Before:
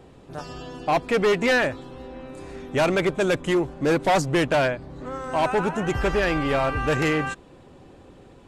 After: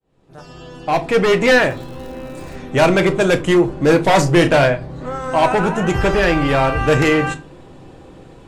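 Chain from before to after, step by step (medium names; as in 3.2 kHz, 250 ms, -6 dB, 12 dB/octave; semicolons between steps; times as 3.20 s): fade-in on the opening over 1.40 s; 1.50–2.53 s: crackle 200 per s -40 dBFS; 4.06–4.64 s: doubling 35 ms -9.5 dB; simulated room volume 150 m³, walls furnished, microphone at 0.63 m; trim +6.5 dB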